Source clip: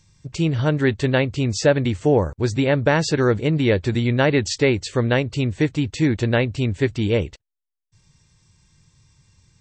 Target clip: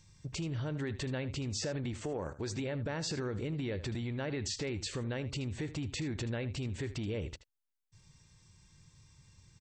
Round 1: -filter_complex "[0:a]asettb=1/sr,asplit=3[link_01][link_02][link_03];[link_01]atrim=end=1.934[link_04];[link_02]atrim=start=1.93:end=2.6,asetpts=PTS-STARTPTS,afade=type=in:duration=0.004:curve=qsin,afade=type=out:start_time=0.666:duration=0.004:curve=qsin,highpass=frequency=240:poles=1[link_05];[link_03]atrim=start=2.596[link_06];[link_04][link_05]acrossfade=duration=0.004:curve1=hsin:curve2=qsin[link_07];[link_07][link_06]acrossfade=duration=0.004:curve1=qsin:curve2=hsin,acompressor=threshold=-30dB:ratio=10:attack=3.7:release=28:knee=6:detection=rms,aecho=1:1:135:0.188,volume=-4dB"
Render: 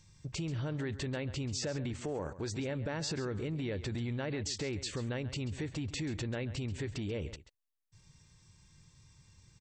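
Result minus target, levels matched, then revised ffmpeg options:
echo 57 ms late
-filter_complex "[0:a]asettb=1/sr,asplit=3[link_01][link_02][link_03];[link_01]atrim=end=1.934[link_04];[link_02]atrim=start=1.93:end=2.6,asetpts=PTS-STARTPTS,afade=type=in:duration=0.004:curve=qsin,afade=type=out:start_time=0.666:duration=0.004:curve=qsin,highpass=frequency=240:poles=1[link_05];[link_03]atrim=start=2.596[link_06];[link_04][link_05]acrossfade=duration=0.004:curve1=hsin:curve2=qsin[link_07];[link_07][link_06]acrossfade=duration=0.004:curve1=qsin:curve2=hsin,acompressor=threshold=-30dB:ratio=10:attack=3.7:release=28:knee=6:detection=rms,aecho=1:1:78:0.188,volume=-4dB"

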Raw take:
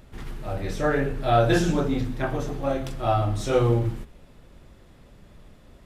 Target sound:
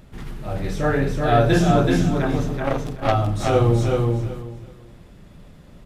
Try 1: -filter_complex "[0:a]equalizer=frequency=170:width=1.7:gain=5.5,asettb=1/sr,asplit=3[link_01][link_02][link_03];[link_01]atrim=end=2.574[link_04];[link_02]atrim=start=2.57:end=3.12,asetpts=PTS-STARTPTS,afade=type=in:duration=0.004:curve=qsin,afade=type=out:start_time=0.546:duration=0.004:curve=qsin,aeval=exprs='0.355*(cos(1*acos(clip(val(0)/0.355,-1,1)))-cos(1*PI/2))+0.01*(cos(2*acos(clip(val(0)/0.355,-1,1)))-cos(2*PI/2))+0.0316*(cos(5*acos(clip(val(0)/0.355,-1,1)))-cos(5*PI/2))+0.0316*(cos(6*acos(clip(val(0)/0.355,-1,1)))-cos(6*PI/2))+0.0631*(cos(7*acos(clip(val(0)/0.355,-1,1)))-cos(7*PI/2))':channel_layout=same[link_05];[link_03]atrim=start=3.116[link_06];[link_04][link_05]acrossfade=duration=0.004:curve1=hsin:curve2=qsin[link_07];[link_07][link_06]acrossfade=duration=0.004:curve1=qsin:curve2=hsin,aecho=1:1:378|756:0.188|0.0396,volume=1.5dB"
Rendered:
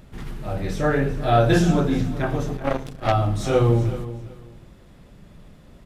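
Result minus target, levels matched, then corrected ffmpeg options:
echo-to-direct −11.5 dB
-filter_complex "[0:a]equalizer=frequency=170:width=1.7:gain=5.5,asettb=1/sr,asplit=3[link_01][link_02][link_03];[link_01]atrim=end=2.574[link_04];[link_02]atrim=start=2.57:end=3.12,asetpts=PTS-STARTPTS,afade=type=in:duration=0.004:curve=qsin,afade=type=out:start_time=0.546:duration=0.004:curve=qsin,aeval=exprs='0.355*(cos(1*acos(clip(val(0)/0.355,-1,1)))-cos(1*PI/2))+0.01*(cos(2*acos(clip(val(0)/0.355,-1,1)))-cos(2*PI/2))+0.0316*(cos(5*acos(clip(val(0)/0.355,-1,1)))-cos(5*PI/2))+0.0316*(cos(6*acos(clip(val(0)/0.355,-1,1)))-cos(6*PI/2))+0.0631*(cos(7*acos(clip(val(0)/0.355,-1,1)))-cos(7*PI/2))':channel_layout=same[link_05];[link_03]atrim=start=3.116[link_06];[link_04][link_05]acrossfade=duration=0.004:curve1=hsin:curve2=qsin[link_07];[link_07][link_06]acrossfade=duration=0.004:curve1=qsin:curve2=hsin,aecho=1:1:378|756|1134:0.708|0.149|0.0312,volume=1.5dB"

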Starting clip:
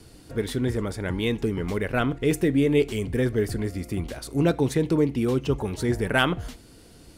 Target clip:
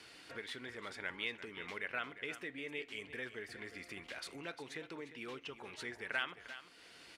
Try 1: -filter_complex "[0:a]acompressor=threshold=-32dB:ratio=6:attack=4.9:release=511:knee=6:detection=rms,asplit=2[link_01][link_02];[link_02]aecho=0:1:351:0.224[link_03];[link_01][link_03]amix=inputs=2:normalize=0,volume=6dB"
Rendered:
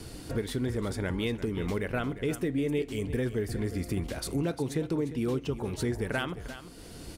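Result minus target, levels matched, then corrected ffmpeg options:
2,000 Hz band −10.5 dB
-filter_complex "[0:a]acompressor=threshold=-32dB:ratio=6:attack=4.9:release=511:knee=6:detection=rms,bandpass=frequency=2200:width_type=q:width=1.3:csg=0,asplit=2[link_01][link_02];[link_02]aecho=0:1:351:0.224[link_03];[link_01][link_03]amix=inputs=2:normalize=0,volume=6dB"

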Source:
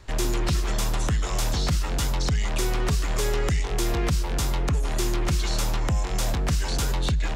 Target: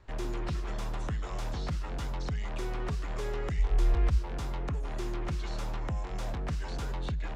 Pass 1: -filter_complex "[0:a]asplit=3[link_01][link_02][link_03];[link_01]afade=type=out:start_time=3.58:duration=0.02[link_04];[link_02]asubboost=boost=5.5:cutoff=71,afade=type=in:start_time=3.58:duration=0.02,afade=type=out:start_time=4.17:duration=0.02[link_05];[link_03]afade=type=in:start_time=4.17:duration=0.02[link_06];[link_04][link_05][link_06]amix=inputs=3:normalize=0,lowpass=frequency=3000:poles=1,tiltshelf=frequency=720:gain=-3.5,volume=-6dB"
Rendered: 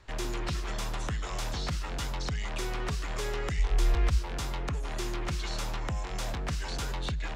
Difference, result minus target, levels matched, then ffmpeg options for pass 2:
4,000 Hz band +7.0 dB
-filter_complex "[0:a]asplit=3[link_01][link_02][link_03];[link_01]afade=type=out:start_time=3.58:duration=0.02[link_04];[link_02]asubboost=boost=5.5:cutoff=71,afade=type=in:start_time=3.58:duration=0.02,afade=type=out:start_time=4.17:duration=0.02[link_05];[link_03]afade=type=in:start_time=4.17:duration=0.02[link_06];[link_04][link_05][link_06]amix=inputs=3:normalize=0,lowpass=frequency=920:poles=1,tiltshelf=frequency=720:gain=-3.5,volume=-6dB"

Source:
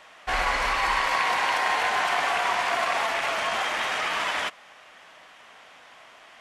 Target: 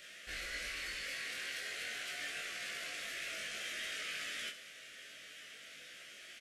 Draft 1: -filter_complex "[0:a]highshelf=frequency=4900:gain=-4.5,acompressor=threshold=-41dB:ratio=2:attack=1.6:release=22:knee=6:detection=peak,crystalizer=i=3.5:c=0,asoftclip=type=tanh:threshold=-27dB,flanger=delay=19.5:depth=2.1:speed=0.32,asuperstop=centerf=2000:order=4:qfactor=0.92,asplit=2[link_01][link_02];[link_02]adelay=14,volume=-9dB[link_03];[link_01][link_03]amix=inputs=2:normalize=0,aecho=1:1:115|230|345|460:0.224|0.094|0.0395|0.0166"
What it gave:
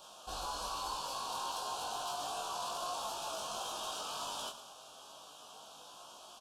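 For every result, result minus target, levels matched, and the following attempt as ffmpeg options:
echo 49 ms late; 1,000 Hz band +14.5 dB; downward compressor: peak gain reduction −4.5 dB
-filter_complex "[0:a]highshelf=frequency=4900:gain=-4.5,acompressor=threshold=-41dB:ratio=2:attack=1.6:release=22:knee=6:detection=peak,crystalizer=i=3.5:c=0,asoftclip=type=tanh:threshold=-27dB,flanger=delay=19.5:depth=2.1:speed=0.32,asuperstop=centerf=2000:order=4:qfactor=0.92,asplit=2[link_01][link_02];[link_02]adelay=14,volume=-9dB[link_03];[link_01][link_03]amix=inputs=2:normalize=0,aecho=1:1:66|132|198|264:0.224|0.094|0.0395|0.0166"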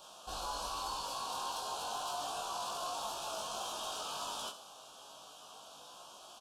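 1,000 Hz band +14.5 dB; downward compressor: peak gain reduction −4.5 dB
-filter_complex "[0:a]highshelf=frequency=4900:gain=-4.5,acompressor=threshold=-41dB:ratio=2:attack=1.6:release=22:knee=6:detection=peak,crystalizer=i=3.5:c=0,asoftclip=type=tanh:threshold=-27dB,flanger=delay=19.5:depth=2.1:speed=0.32,asuperstop=centerf=920:order=4:qfactor=0.92,asplit=2[link_01][link_02];[link_02]adelay=14,volume=-9dB[link_03];[link_01][link_03]amix=inputs=2:normalize=0,aecho=1:1:66|132|198|264:0.224|0.094|0.0395|0.0166"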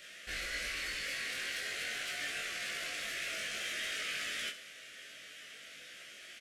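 downward compressor: peak gain reduction −4.5 dB
-filter_complex "[0:a]highshelf=frequency=4900:gain=-4.5,acompressor=threshold=-50dB:ratio=2:attack=1.6:release=22:knee=6:detection=peak,crystalizer=i=3.5:c=0,asoftclip=type=tanh:threshold=-27dB,flanger=delay=19.5:depth=2.1:speed=0.32,asuperstop=centerf=920:order=4:qfactor=0.92,asplit=2[link_01][link_02];[link_02]adelay=14,volume=-9dB[link_03];[link_01][link_03]amix=inputs=2:normalize=0,aecho=1:1:66|132|198|264:0.224|0.094|0.0395|0.0166"

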